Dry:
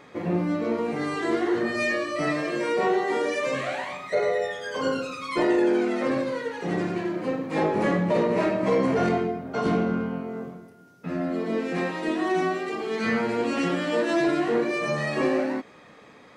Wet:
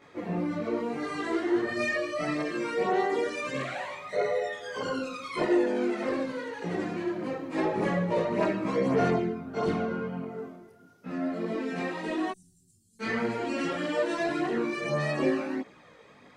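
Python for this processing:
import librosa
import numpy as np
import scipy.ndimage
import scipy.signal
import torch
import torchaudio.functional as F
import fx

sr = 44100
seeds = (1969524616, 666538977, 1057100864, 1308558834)

y = fx.ellip_bandstop(x, sr, low_hz=110.0, high_hz=8500.0, order=3, stop_db=60, at=(12.3, 12.99), fade=0.02)
y = fx.chorus_voices(y, sr, voices=2, hz=0.83, base_ms=18, depth_ms=2.3, mix_pct=65)
y = y * librosa.db_to_amplitude(-1.5)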